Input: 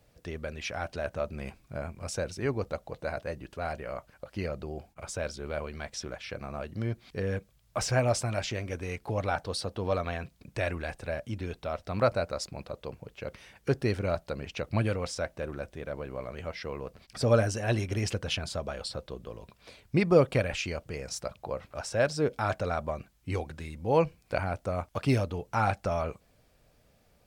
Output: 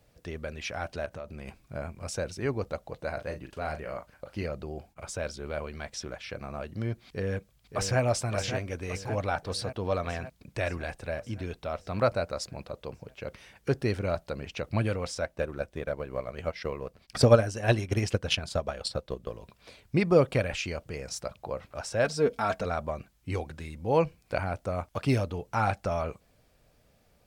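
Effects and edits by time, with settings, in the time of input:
0:01.05–0:01.48: downward compressor 3 to 1, threshold −38 dBFS
0:03.14–0:04.43: double-tracking delay 39 ms −8.5 dB
0:07.07–0:08.01: delay throw 570 ms, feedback 65%, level −7.5 dB
0:15.21–0:19.33: transient designer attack +9 dB, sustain −5 dB
0:22.04–0:22.65: comb filter 4.4 ms

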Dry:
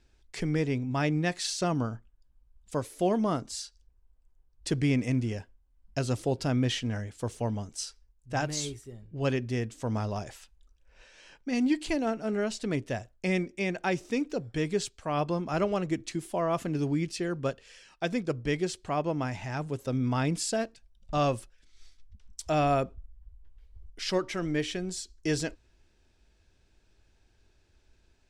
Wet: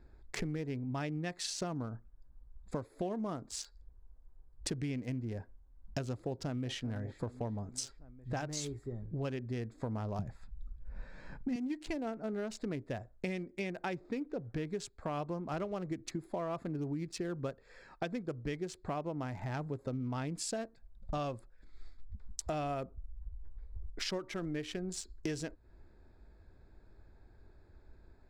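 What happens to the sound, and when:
0:06.11–0:06.83: delay throw 390 ms, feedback 45%, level −17 dB
0:10.19–0:11.56: low shelf with overshoot 270 Hz +11 dB, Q 1.5
0:13.95–0:14.67: low-pass filter 4,200 Hz
whole clip: adaptive Wiener filter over 15 samples; downward compressor 6 to 1, threshold −43 dBFS; level +7 dB

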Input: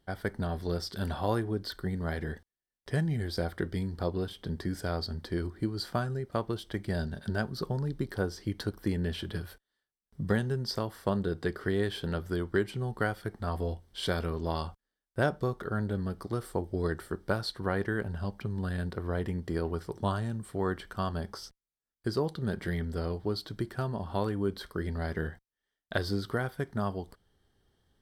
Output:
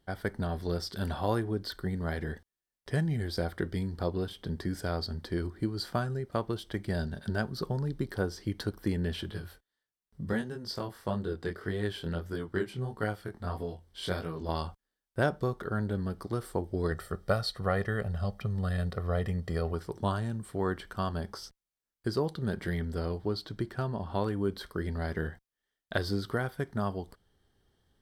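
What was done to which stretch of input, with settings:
0:09.30–0:14.49: chorus effect 1.6 Hz, delay 18.5 ms, depth 6 ms
0:16.91–0:19.73: comb filter 1.6 ms
0:23.27–0:24.27: parametric band 12,000 Hz −6 dB 1.2 octaves

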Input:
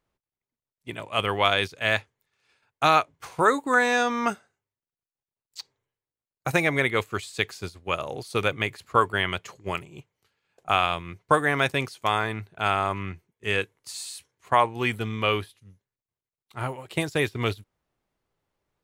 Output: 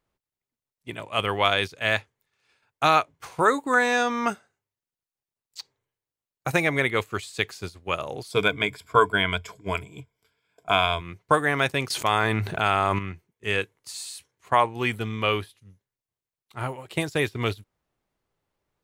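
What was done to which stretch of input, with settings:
0:08.31–0:11.01: EQ curve with evenly spaced ripples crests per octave 1.7, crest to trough 13 dB
0:11.90–0:12.99: envelope flattener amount 70%

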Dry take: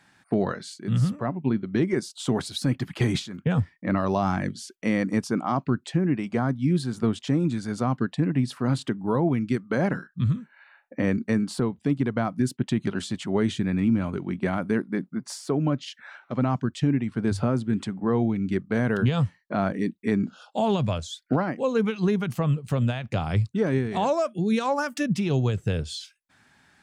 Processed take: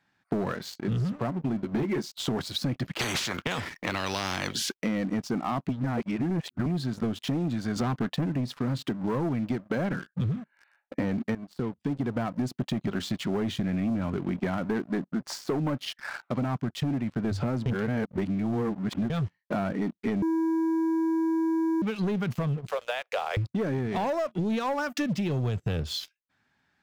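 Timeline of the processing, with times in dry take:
0:01.62–0:02.12: double-tracking delay 14 ms −3 dB
0:02.99–0:04.74: every bin compressed towards the loudest bin 4 to 1
0:05.69–0:06.66: reverse
0:07.76–0:08.26: clip gain +6 dB
0:11.35–0:12.18: fade in, from −20.5 dB
0:14.61–0:16.22: parametric band 900 Hz +5.5 dB 2.3 octaves
0:17.66–0:19.10: reverse
0:20.22–0:21.82: beep over 325 Hz −15 dBFS
0:22.69–0:23.37: Butterworth high-pass 440 Hz 72 dB per octave
whole clip: parametric band 9,300 Hz −13 dB 0.68 octaves; leveller curve on the samples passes 3; downward compressor, threshold −20 dBFS; level −6 dB

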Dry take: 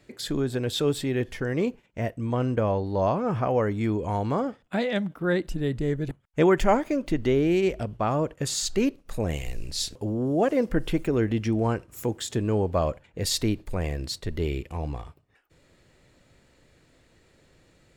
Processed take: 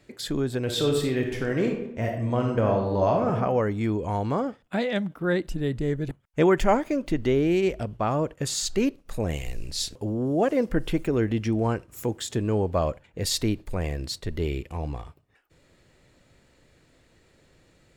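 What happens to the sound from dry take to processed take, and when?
0:00.63–0:03.32: thrown reverb, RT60 0.82 s, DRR 2 dB

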